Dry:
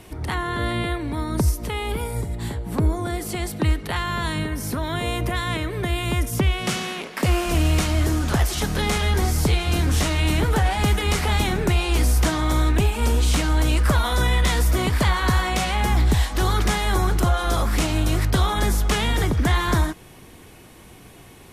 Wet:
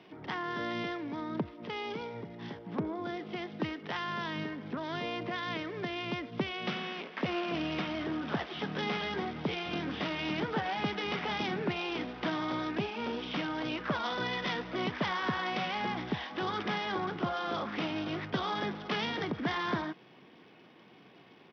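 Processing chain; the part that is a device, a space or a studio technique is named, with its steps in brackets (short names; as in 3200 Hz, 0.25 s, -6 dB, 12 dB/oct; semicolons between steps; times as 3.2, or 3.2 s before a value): Bluetooth headset (HPF 160 Hz 24 dB/oct; downsampling 8000 Hz; gain -9 dB; SBC 64 kbps 44100 Hz)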